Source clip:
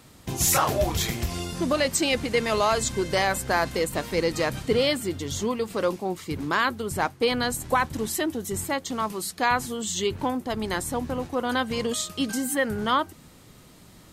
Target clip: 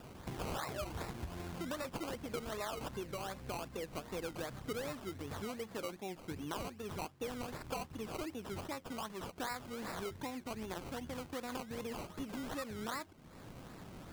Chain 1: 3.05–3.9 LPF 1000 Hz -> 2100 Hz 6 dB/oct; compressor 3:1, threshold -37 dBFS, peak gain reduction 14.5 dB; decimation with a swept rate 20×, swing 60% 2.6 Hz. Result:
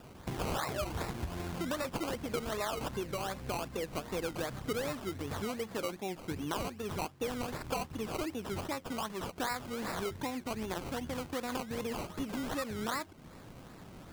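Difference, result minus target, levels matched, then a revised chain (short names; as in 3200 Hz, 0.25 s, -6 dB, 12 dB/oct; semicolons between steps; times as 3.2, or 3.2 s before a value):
compressor: peak gain reduction -5.5 dB
3.05–3.9 LPF 1000 Hz -> 2100 Hz 6 dB/oct; compressor 3:1, threshold -45 dBFS, peak gain reduction 20 dB; decimation with a swept rate 20×, swing 60% 2.6 Hz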